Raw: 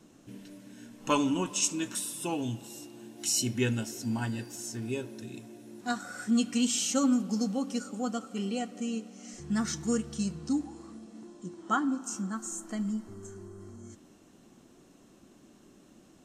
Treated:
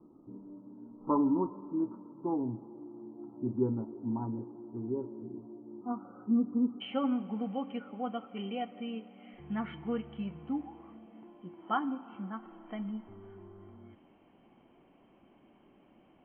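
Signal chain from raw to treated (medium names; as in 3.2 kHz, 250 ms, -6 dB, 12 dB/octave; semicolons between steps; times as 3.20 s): rippled Chebyshev low-pass 1.3 kHz, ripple 9 dB, from 6.80 s 3.2 kHz; trim +2.5 dB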